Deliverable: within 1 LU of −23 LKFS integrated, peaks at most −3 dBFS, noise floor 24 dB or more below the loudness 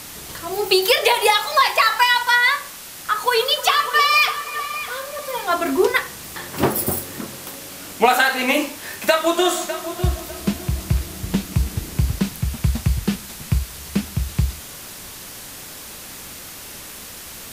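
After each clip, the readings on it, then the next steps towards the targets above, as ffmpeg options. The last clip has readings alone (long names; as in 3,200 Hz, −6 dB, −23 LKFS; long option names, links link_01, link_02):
background noise floor −37 dBFS; target noise floor −44 dBFS; integrated loudness −19.5 LKFS; sample peak −1.5 dBFS; target loudness −23.0 LKFS
→ -af "afftdn=noise_reduction=7:noise_floor=-37"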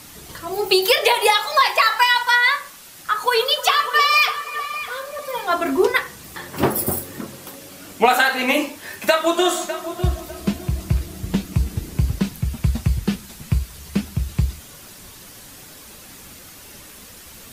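background noise floor −42 dBFS; target noise floor −44 dBFS
→ -af "afftdn=noise_reduction=6:noise_floor=-42"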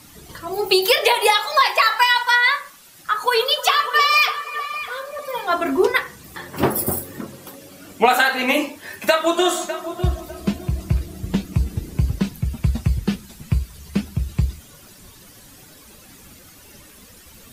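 background noise floor −46 dBFS; integrated loudness −19.5 LKFS; sample peak −1.5 dBFS; target loudness −23.0 LKFS
→ -af "volume=-3.5dB"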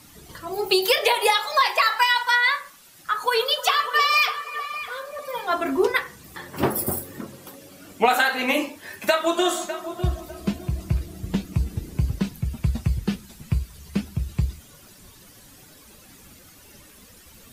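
integrated loudness −23.0 LKFS; sample peak −5.0 dBFS; background noise floor −50 dBFS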